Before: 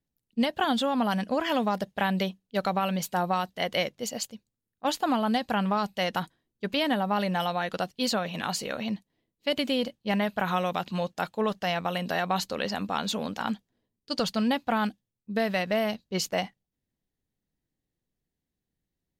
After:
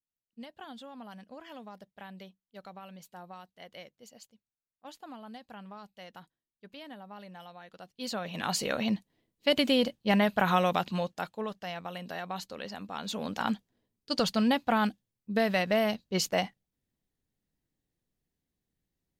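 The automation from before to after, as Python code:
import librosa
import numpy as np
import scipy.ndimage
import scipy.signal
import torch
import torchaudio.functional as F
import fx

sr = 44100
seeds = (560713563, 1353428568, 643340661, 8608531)

y = fx.gain(x, sr, db=fx.line((7.78, -20.0), (8.05, -9.5), (8.63, 2.0), (10.74, 2.0), (11.55, -10.0), (12.91, -10.0), (13.39, 0.0)))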